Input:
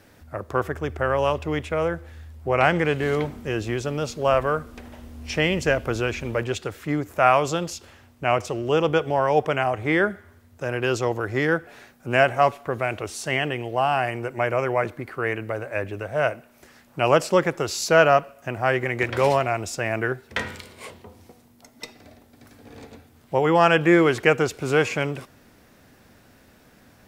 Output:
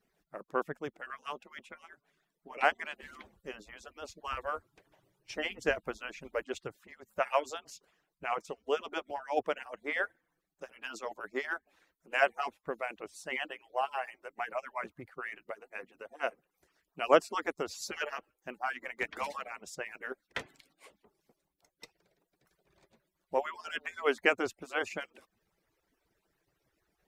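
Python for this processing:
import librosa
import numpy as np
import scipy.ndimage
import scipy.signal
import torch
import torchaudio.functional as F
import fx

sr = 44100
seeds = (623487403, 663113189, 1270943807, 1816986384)

y = fx.hpss_only(x, sr, part='percussive')
y = fx.upward_expand(y, sr, threshold_db=-43.0, expansion=1.5)
y = F.gain(torch.from_numpy(y), -4.0).numpy()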